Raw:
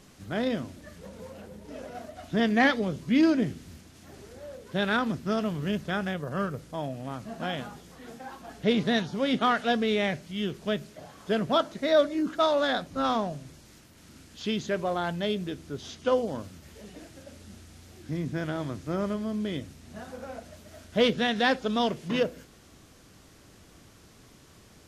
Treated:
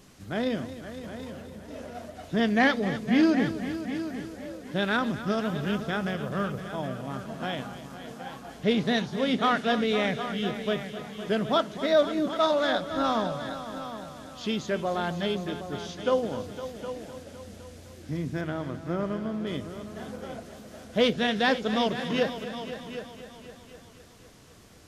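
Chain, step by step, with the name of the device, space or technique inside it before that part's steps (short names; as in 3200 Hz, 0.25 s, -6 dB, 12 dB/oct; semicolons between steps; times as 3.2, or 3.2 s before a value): 18.41–19.47 tone controls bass -2 dB, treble -10 dB; multi-head tape echo (multi-head echo 0.255 s, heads all three, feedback 41%, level -14 dB; wow and flutter 23 cents)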